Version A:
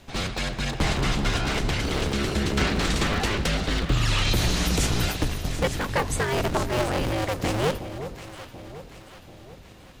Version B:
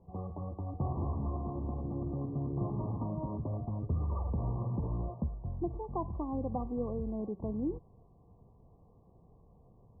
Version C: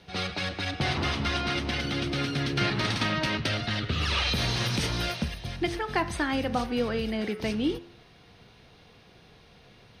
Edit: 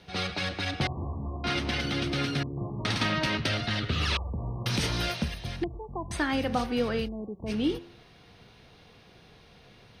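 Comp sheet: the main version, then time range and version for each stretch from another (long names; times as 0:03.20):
C
0:00.87–0:01.44: punch in from B
0:02.43–0:02.85: punch in from B
0:04.17–0:04.66: punch in from B
0:05.64–0:06.11: punch in from B
0:07.06–0:07.49: punch in from B, crossfade 0.06 s
not used: A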